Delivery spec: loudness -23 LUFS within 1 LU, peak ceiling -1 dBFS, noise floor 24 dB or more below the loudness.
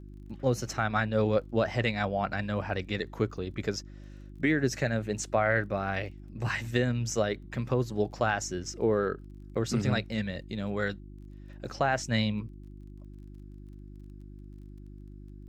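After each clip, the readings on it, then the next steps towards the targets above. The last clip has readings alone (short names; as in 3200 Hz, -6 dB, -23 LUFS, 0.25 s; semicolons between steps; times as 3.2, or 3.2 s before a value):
ticks 26/s; hum 50 Hz; harmonics up to 350 Hz; hum level -45 dBFS; loudness -30.5 LUFS; peak -14.0 dBFS; loudness target -23.0 LUFS
-> de-click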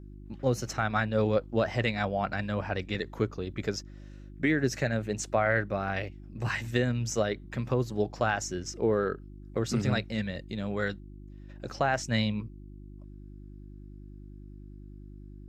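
ticks 0/s; hum 50 Hz; harmonics up to 350 Hz; hum level -45 dBFS
-> de-hum 50 Hz, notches 7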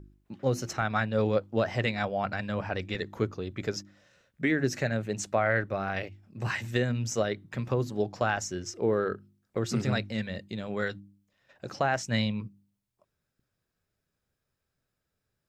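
hum none; loudness -30.5 LUFS; peak -14.0 dBFS; loudness target -23.0 LUFS
-> gain +7.5 dB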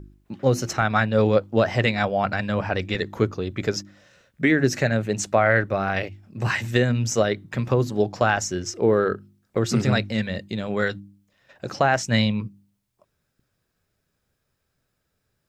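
loudness -23.0 LUFS; peak -6.5 dBFS; noise floor -76 dBFS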